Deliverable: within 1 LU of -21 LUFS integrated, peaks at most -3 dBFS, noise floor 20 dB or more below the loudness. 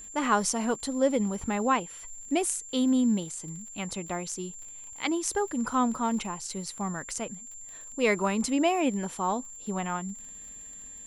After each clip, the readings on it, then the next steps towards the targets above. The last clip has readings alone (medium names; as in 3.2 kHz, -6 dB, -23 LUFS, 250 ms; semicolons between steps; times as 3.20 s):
tick rate 47 per s; steady tone 7.3 kHz; tone level -42 dBFS; loudness -29.0 LUFS; peak level -11.0 dBFS; loudness target -21.0 LUFS
-> de-click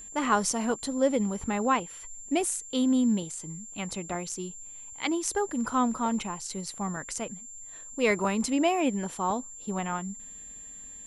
tick rate 0.090 per s; steady tone 7.3 kHz; tone level -42 dBFS
-> band-stop 7.3 kHz, Q 30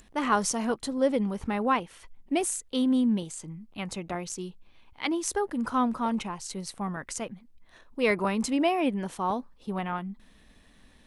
steady tone not found; loudness -29.0 LUFS; peak level -11.5 dBFS; loudness target -21.0 LUFS
-> trim +8 dB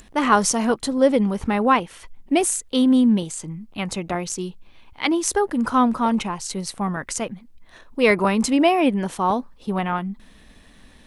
loudness -21.0 LUFS; peak level -3.5 dBFS; noise floor -50 dBFS